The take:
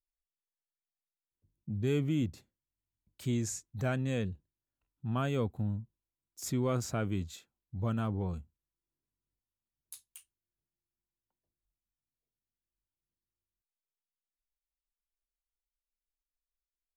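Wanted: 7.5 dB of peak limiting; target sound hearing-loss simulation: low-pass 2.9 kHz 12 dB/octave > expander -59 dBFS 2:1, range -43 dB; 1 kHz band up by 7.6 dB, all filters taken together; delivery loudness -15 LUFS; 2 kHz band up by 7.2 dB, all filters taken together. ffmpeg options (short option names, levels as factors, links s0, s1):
-af "equalizer=f=1000:t=o:g=7.5,equalizer=f=2000:t=o:g=8,alimiter=limit=0.075:level=0:latency=1,lowpass=2900,agate=range=0.00708:threshold=0.00112:ratio=2,volume=11.2"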